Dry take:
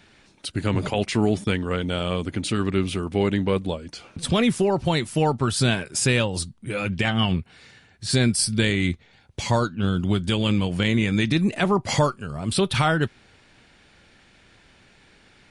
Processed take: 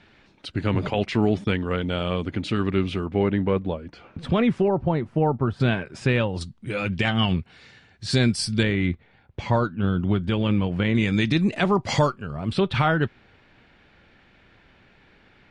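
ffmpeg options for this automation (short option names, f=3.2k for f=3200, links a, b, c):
-af "asetnsamples=n=441:p=0,asendcmd='3.06 lowpass f 2100;4.68 lowpass f 1100;5.6 lowpass f 2300;6.41 lowpass f 5600;8.63 lowpass f 2200;10.95 lowpass f 5600;12.12 lowpass f 2900',lowpass=3.6k"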